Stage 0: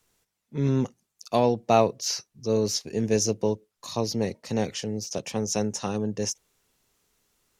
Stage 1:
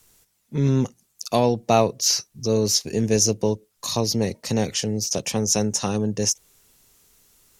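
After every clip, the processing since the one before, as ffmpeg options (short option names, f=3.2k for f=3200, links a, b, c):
-filter_complex "[0:a]lowshelf=f=160:g=5.5,asplit=2[a][b];[b]acompressor=threshold=-32dB:ratio=6,volume=1.5dB[c];[a][c]amix=inputs=2:normalize=0,aemphasis=mode=production:type=cd"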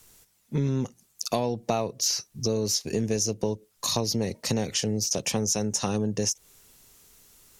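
-af "acompressor=threshold=-25dB:ratio=6,volume=2dB"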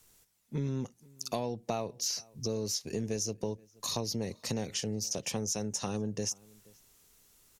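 -filter_complex "[0:a]asplit=2[a][b];[b]adelay=478.1,volume=-25dB,highshelf=f=4k:g=-10.8[c];[a][c]amix=inputs=2:normalize=0,volume=-7.5dB"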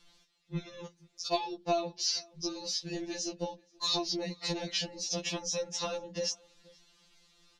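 -af "lowpass=f=4.1k:t=q:w=2.2,afftfilt=real='re*2.83*eq(mod(b,8),0)':imag='im*2.83*eq(mod(b,8),0)':win_size=2048:overlap=0.75,volume=4dB"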